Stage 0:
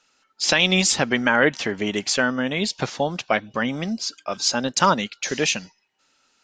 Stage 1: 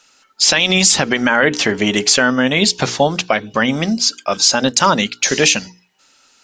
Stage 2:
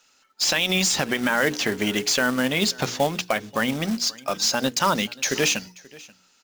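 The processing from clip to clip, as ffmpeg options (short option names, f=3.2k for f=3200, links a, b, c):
-af "highshelf=f=4.9k:g=6.5,bandreject=f=60:t=h:w=6,bandreject=f=120:t=h:w=6,bandreject=f=180:t=h:w=6,bandreject=f=240:t=h:w=6,bandreject=f=300:t=h:w=6,bandreject=f=360:t=h:w=6,bandreject=f=420:t=h:w=6,bandreject=f=480:t=h:w=6,alimiter=level_in=10dB:limit=-1dB:release=50:level=0:latency=1,volume=-1dB"
-filter_complex "[0:a]acrossover=split=2700[a][b];[b]asoftclip=type=hard:threshold=-10dB[c];[a][c]amix=inputs=2:normalize=0,acrusher=bits=3:mode=log:mix=0:aa=0.000001,aecho=1:1:533:0.075,volume=-8dB"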